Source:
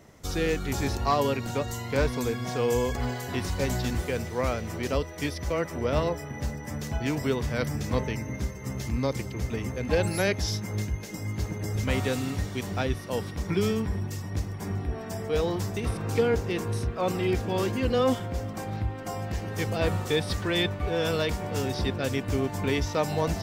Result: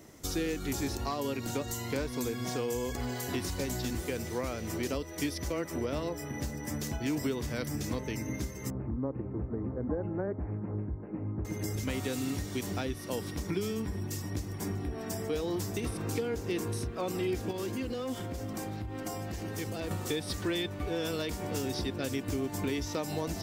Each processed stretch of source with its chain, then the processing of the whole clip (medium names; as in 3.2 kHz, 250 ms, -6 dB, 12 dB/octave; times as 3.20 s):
8.70–11.45 s: Butterworth band-stop 2.6 kHz, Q 0.7 + tape spacing loss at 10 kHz 20 dB + careless resampling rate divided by 8×, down none, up filtered
17.51–19.91 s: compression 4:1, threshold -32 dBFS + hard clipper -28.5 dBFS
whole clip: treble shelf 4.5 kHz +10 dB; compression, threshold -29 dBFS; peaking EQ 310 Hz +8 dB 0.67 oct; trim -3 dB